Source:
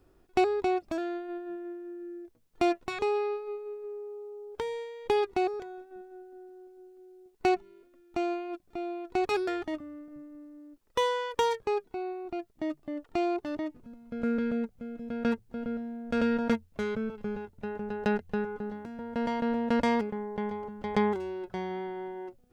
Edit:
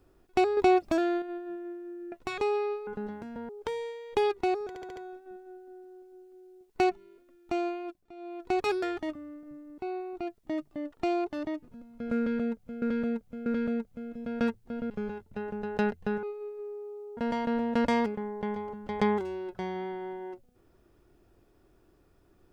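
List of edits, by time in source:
0.57–1.22 gain +6 dB
2.12–2.73 cut
3.48–4.42 swap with 18.5–19.12
5.61 stutter 0.07 s, 5 plays
8.47–9.07 dip -12.5 dB, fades 0.26 s
10.43–11.9 cut
14.3–14.94 loop, 3 plays
15.74–17.17 cut

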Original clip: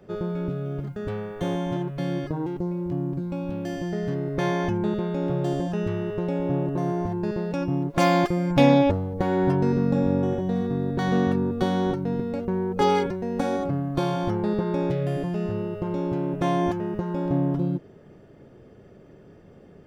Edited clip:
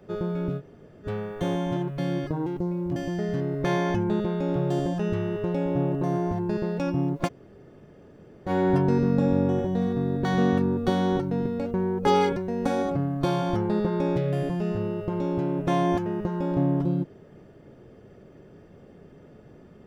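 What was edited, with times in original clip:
0.59–1.06 room tone, crossfade 0.06 s
2.96–3.7 cut
8–9.22 room tone, crossfade 0.06 s

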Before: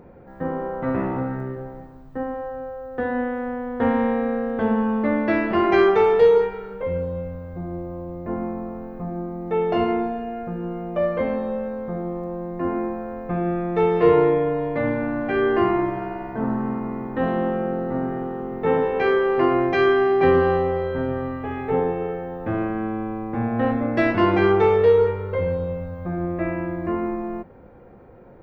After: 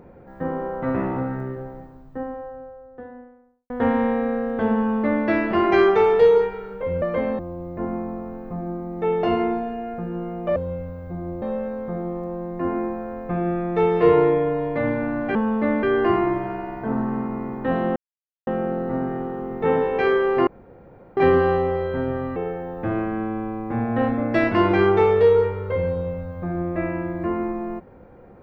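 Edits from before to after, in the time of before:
1.56–3.7 studio fade out
4.77–5.25 copy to 15.35
7.02–7.88 swap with 11.05–11.42
17.48 insert silence 0.51 s
19.48–20.18 room tone
21.37–21.99 cut

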